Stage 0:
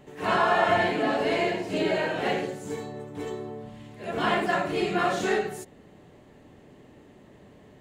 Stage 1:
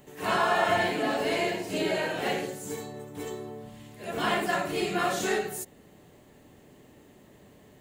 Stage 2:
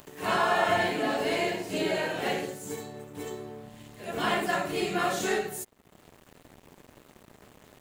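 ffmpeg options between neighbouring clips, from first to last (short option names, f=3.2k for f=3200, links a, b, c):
-af "aemphasis=mode=production:type=50fm,volume=-2.5dB"
-af "aeval=exprs='sgn(val(0))*max(abs(val(0))-0.00224,0)':c=same,acompressor=mode=upward:threshold=-40dB:ratio=2.5"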